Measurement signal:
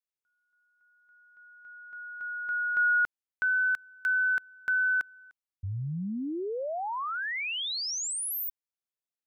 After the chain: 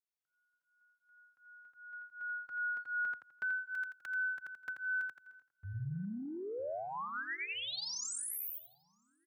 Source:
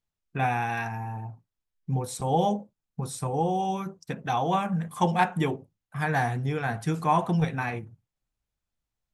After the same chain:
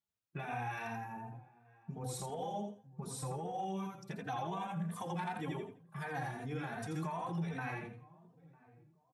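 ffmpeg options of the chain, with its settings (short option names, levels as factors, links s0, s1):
-filter_complex "[0:a]asplit=2[s0][s1];[s1]aecho=0:1:84|168|252|336:0.708|0.184|0.0479|0.0124[s2];[s0][s2]amix=inputs=2:normalize=0,acompressor=threshold=0.0355:ratio=6:attack=3.6:release=52:knee=6:detection=rms,highpass=88,asplit=2[s3][s4];[s4]adelay=953,lowpass=f=810:p=1,volume=0.0944,asplit=2[s5][s6];[s6]adelay=953,lowpass=f=810:p=1,volume=0.35,asplit=2[s7][s8];[s8]adelay=953,lowpass=f=810:p=1,volume=0.35[s9];[s5][s7][s9]amix=inputs=3:normalize=0[s10];[s3][s10]amix=inputs=2:normalize=0,asplit=2[s11][s12];[s12]adelay=3.1,afreqshift=2.7[s13];[s11][s13]amix=inputs=2:normalize=1,volume=0.631"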